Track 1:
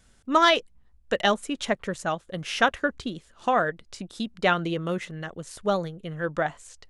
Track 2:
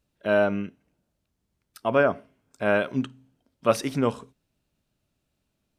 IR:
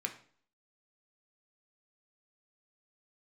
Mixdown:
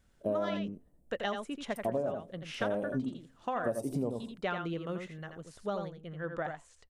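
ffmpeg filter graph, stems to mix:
-filter_complex "[0:a]volume=-9dB,asplit=2[link_01][link_02];[link_02]volume=-7dB[link_03];[1:a]firequalizer=gain_entry='entry(680,0);entry(1500,-27);entry(8400,6)':delay=0.05:min_phase=1,volume=0dB,asplit=2[link_04][link_05];[link_05]volume=-7dB[link_06];[link_03][link_06]amix=inputs=2:normalize=0,aecho=0:1:84:1[link_07];[link_01][link_04][link_07]amix=inputs=3:normalize=0,highshelf=frequency=3700:gain=-8,acompressor=threshold=-29dB:ratio=10"

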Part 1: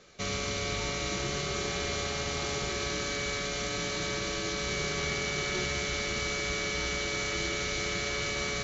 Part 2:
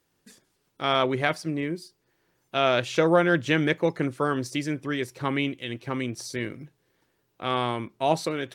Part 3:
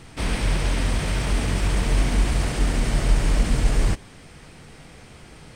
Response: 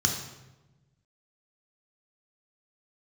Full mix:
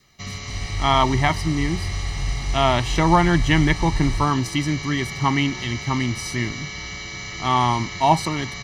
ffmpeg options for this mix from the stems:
-filter_complex "[0:a]volume=-3dB,asplit=2[link_01][link_02];[link_02]volume=-23dB[link_03];[1:a]lowshelf=frequency=150:gain=7,volume=2.5dB[link_04];[2:a]aecho=1:1:2.6:0.65,adelay=300,volume=-14.5dB,asplit=2[link_05][link_06];[link_06]volume=-16.5dB[link_07];[3:a]atrim=start_sample=2205[link_08];[link_03][link_07]amix=inputs=2:normalize=0[link_09];[link_09][link_08]afir=irnorm=-1:irlink=0[link_10];[link_01][link_04][link_05][link_10]amix=inputs=4:normalize=0,adynamicequalizer=threshold=0.00891:dfrequency=900:dqfactor=4.4:tfrequency=900:tqfactor=4.4:attack=5:release=100:ratio=0.375:range=3.5:mode=boostabove:tftype=bell,aecho=1:1:1:0.78"

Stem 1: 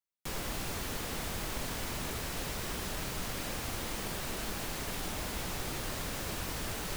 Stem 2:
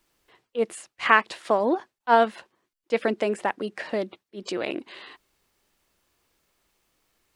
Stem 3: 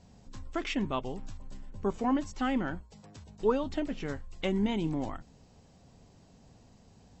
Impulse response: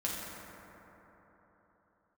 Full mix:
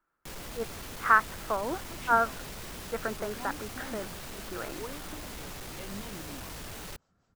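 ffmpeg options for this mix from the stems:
-filter_complex "[0:a]asoftclip=type=tanh:threshold=-36dB,volume=-1dB[link_01];[1:a]lowpass=frequency=1400:width_type=q:width=5.8,volume=-12dB[link_02];[2:a]acrossover=split=410[link_03][link_04];[link_03]aeval=exprs='val(0)*(1-0.7/2+0.7/2*cos(2*PI*5*n/s))':channel_layout=same[link_05];[link_04]aeval=exprs='val(0)*(1-0.7/2-0.7/2*cos(2*PI*5*n/s))':channel_layout=same[link_06];[link_05][link_06]amix=inputs=2:normalize=0,adelay=1350,volume=-11.5dB[link_07];[link_01][link_02][link_07]amix=inputs=3:normalize=0"

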